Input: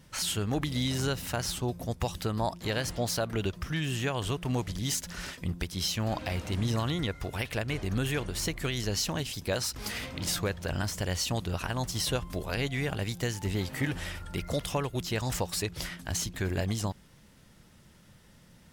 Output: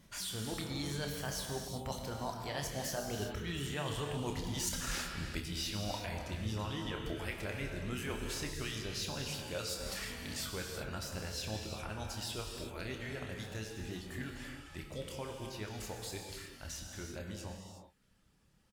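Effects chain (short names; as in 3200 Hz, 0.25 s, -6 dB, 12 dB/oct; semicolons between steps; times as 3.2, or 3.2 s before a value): Doppler pass-by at 4.26, 27 m/s, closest 16 m; reverb removal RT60 0.78 s; reverse; compressor 8:1, threshold -50 dBFS, peak gain reduction 22.5 dB; reverse; doubler 28 ms -8 dB; non-linear reverb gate 0.4 s flat, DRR 1.5 dB; gain +12.5 dB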